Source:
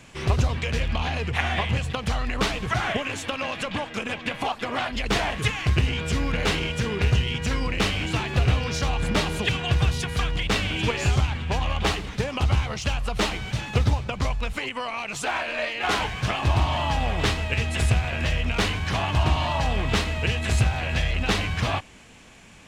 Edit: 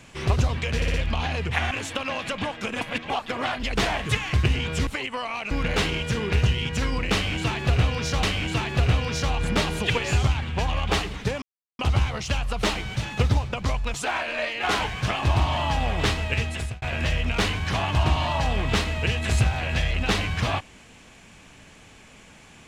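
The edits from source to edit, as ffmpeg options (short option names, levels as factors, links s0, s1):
-filter_complex "[0:a]asplit=14[s0][s1][s2][s3][s4][s5][s6][s7][s8][s9][s10][s11][s12][s13];[s0]atrim=end=0.822[s14];[s1]atrim=start=0.758:end=0.822[s15];[s2]atrim=start=0.758:end=0.822[s16];[s3]atrim=start=0.758:end=1.532[s17];[s4]atrim=start=3.038:end=4.142[s18];[s5]atrim=start=4.138:end=4.432,asetpts=PTS-STARTPTS,areverse[s19];[s6]atrim=start=4.428:end=6.202[s20];[s7]atrim=start=14.498:end=15.142[s21];[s8]atrim=start=6.198:end=8.922[s22];[s9]atrim=start=7.818:end=9.542[s23];[s10]atrim=start=10.878:end=12.35,asetpts=PTS-STARTPTS,afade=t=out:st=1.468:d=0.004:c=hsin,apad=pad_dur=0.37[s24];[s11]atrim=start=12.35:end=14.502,asetpts=PTS-STARTPTS,afade=t=in:d=0.004:c=hsin[s25];[s12]atrim=start=15.138:end=18.02,asetpts=PTS-STARTPTS,afade=t=out:st=2.442:d=0.44[s26];[s13]atrim=start=18.02,asetpts=PTS-STARTPTS,afade=t=in:d=0.004:c=hsin[s27];[s14][s15]acrossfade=d=0.004:c1=hsin:c2=hsin[s28];[s28][s16]acrossfade=d=0.004:c1=hsin:c2=hsin[s29];[s29][s17]acrossfade=d=0.004:c1=hsin:c2=hsin[s30];[s30][s18]acrossfade=d=0.004:c1=hsin:c2=hsin[s31];[s31][s19]acrossfade=d=0.004:c1=hsin:c2=hsin[s32];[s32][s20]acrossfade=d=0.004:c1=hsin:c2=hsin[s33];[s33][s21]acrossfade=d=0.004:c1=hsin:c2=hsin[s34];[s34][s22]acrossfade=d=0.004:c1=hsin:c2=hsin[s35];[s35][s23]acrossfade=d=0.004:c1=hsin:c2=hsin[s36];[s24][s25]concat=n=2:v=0:a=1[s37];[s36][s37]acrossfade=d=0.004:c1=hsin:c2=hsin[s38];[s26][s27]concat=n=2:v=0:a=1[s39];[s38][s39]acrossfade=d=0.004:c1=hsin:c2=hsin"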